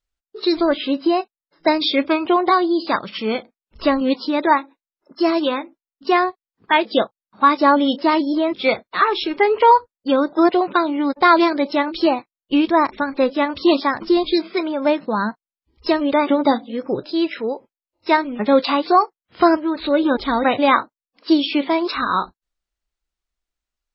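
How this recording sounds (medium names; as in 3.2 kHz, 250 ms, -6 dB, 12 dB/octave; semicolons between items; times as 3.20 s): noise floor -96 dBFS; spectral tilt -1.5 dB/octave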